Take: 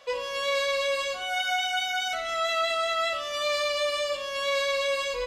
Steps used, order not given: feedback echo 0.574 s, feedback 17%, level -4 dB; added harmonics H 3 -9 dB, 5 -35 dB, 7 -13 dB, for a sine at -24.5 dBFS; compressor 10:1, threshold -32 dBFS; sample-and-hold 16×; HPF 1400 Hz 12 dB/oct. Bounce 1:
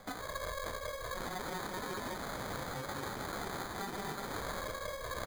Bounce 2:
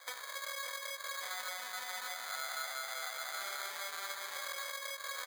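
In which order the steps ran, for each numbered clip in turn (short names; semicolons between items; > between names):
feedback echo > compressor > added harmonics > HPF > sample-and-hold; added harmonics > feedback echo > sample-and-hold > compressor > HPF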